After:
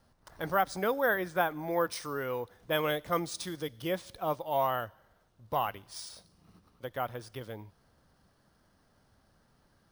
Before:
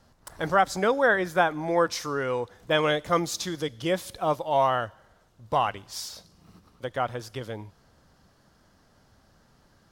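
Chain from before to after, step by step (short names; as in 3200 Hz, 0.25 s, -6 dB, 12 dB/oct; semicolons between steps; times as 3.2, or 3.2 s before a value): careless resampling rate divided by 3×, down filtered, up hold; gain -6.5 dB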